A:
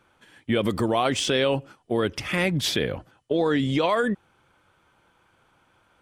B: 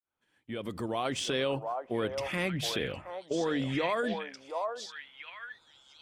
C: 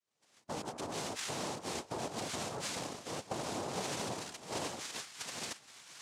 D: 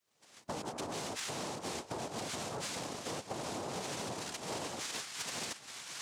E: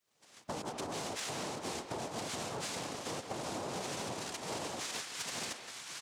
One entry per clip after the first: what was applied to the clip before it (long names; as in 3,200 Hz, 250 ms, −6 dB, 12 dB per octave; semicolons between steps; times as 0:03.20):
fade in at the beginning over 1.20 s; mains-hum notches 50/100/150/200 Hz; echo through a band-pass that steps 720 ms, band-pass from 780 Hz, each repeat 1.4 octaves, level −0.5 dB; level −8 dB
sub-harmonics by changed cycles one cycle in 3, inverted; downward compressor 4 to 1, threshold −43 dBFS, peak gain reduction 14 dB; cochlear-implant simulation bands 2; level +4.5 dB
downward compressor 10 to 1, threshold −44 dBFS, peak gain reduction 11 dB; soft clipping −38 dBFS, distortion −21 dB; level +8.5 dB
far-end echo of a speakerphone 170 ms, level −7 dB